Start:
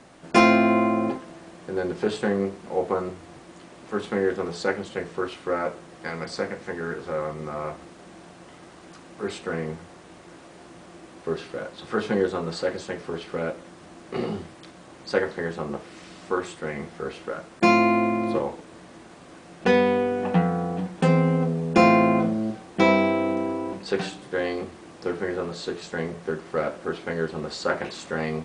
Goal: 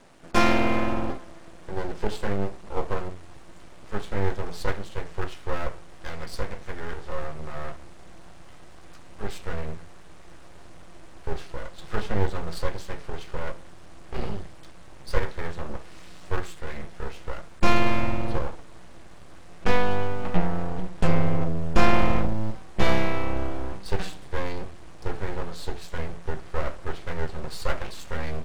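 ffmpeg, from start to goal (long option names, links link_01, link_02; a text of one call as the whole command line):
ffmpeg -i in.wav -af "aeval=exprs='max(val(0),0)':channel_layout=same,asubboost=boost=4:cutoff=110" out.wav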